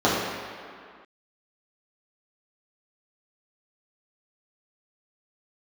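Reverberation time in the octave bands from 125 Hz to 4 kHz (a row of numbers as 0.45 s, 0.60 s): 1.6 s, 2.0 s, 2.0 s, 2.3 s, no reading, 1.6 s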